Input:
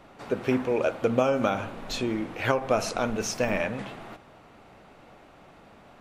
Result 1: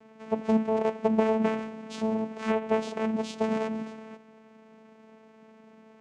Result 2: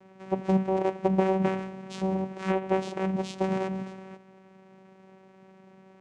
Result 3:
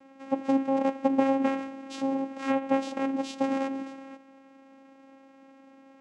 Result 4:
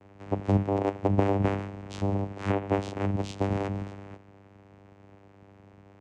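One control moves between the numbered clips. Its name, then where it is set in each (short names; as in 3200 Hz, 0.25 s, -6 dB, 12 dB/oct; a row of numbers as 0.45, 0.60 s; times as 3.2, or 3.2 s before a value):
vocoder, frequency: 220, 190, 270, 99 Hz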